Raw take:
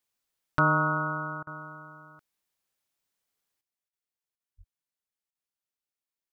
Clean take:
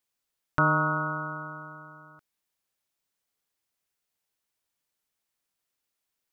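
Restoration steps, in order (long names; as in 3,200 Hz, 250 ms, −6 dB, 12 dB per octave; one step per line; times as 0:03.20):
clipped peaks rebuilt −12 dBFS
0:04.57–0:04.69: high-pass filter 140 Hz 24 dB per octave
repair the gap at 0:01.43/0:03.89/0:04.36/0:05.31, 39 ms
level 0 dB, from 0:03.61 +11 dB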